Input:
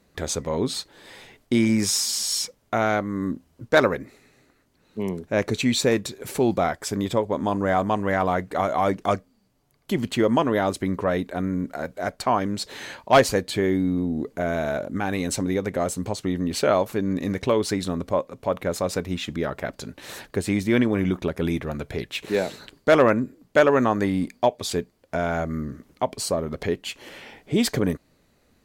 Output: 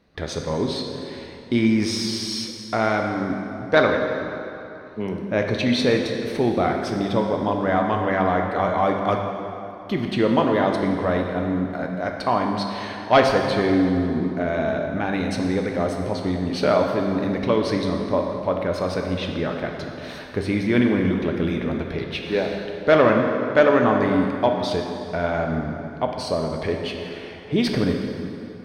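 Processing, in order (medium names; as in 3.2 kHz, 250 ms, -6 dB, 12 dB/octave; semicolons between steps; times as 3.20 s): Savitzky-Golay filter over 15 samples; plate-style reverb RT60 3 s, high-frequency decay 0.7×, DRR 2 dB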